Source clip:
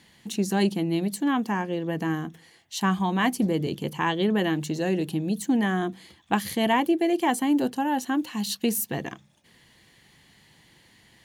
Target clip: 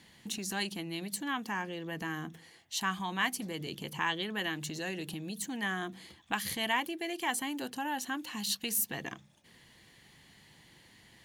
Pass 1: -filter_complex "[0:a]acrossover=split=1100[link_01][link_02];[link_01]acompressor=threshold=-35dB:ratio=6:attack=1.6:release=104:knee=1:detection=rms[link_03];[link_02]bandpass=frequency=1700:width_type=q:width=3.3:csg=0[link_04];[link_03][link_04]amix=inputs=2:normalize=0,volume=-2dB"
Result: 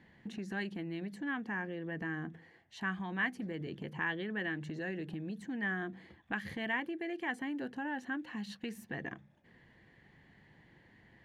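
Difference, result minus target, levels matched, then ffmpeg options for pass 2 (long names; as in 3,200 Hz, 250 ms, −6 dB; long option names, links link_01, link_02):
2,000 Hz band +2.5 dB
-filter_complex "[0:a]acrossover=split=1100[link_01][link_02];[link_01]acompressor=threshold=-35dB:ratio=6:attack=1.6:release=104:knee=1:detection=rms[link_03];[link_03][link_02]amix=inputs=2:normalize=0,volume=-2dB"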